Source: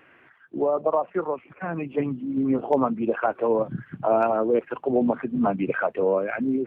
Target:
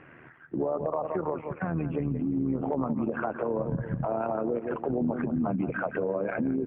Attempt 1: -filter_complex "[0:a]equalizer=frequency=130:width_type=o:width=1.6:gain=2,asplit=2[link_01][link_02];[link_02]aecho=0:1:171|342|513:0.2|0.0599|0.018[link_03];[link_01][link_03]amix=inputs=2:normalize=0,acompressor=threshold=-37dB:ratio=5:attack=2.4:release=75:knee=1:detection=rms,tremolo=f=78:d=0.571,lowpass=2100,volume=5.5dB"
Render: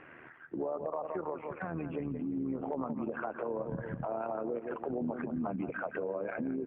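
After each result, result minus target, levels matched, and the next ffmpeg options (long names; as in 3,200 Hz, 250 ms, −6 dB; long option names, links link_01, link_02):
downward compressor: peak gain reduction +5.5 dB; 125 Hz band −3.5 dB
-filter_complex "[0:a]equalizer=frequency=130:width_type=o:width=1.6:gain=2,asplit=2[link_01][link_02];[link_02]aecho=0:1:171|342|513:0.2|0.0599|0.018[link_03];[link_01][link_03]amix=inputs=2:normalize=0,acompressor=threshold=-29dB:ratio=5:attack=2.4:release=75:knee=1:detection=rms,tremolo=f=78:d=0.571,lowpass=2100,volume=5.5dB"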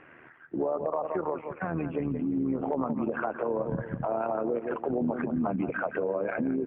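125 Hz band −4.0 dB
-filter_complex "[0:a]equalizer=frequency=130:width_type=o:width=1.6:gain=11,asplit=2[link_01][link_02];[link_02]aecho=0:1:171|342|513:0.2|0.0599|0.018[link_03];[link_01][link_03]amix=inputs=2:normalize=0,acompressor=threshold=-29dB:ratio=5:attack=2.4:release=75:knee=1:detection=rms,tremolo=f=78:d=0.571,lowpass=2100,volume=5.5dB"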